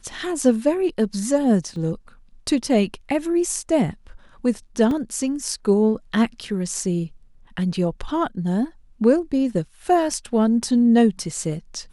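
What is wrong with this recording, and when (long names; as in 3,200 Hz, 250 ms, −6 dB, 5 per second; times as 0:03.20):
0:01.76: drop-out 2.3 ms
0:04.91: drop-out 2.4 ms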